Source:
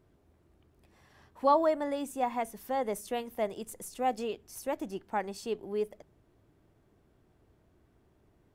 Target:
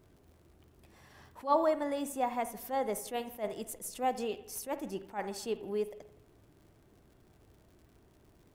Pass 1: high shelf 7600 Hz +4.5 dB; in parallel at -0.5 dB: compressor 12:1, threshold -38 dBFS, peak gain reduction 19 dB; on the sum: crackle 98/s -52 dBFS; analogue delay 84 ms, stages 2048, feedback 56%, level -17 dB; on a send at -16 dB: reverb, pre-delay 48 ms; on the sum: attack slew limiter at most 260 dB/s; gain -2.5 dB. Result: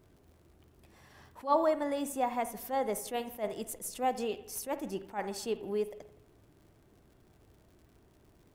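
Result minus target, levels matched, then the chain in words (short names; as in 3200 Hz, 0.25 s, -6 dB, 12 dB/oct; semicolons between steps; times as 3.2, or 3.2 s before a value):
compressor: peak gain reduction -5.5 dB
high shelf 7600 Hz +4.5 dB; in parallel at -0.5 dB: compressor 12:1, threshold -44 dBFS, peak gain reduction 24.5 dB; on the sum: crackle 98/s -52 dBFS; analogue delay 84 ms, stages 2048, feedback 56%, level -17 dB; on a send at -16 dB: reverb, pre-delay 48 ms; on the sum: attack slew limiter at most 260 dB/s; gain -2.5 dB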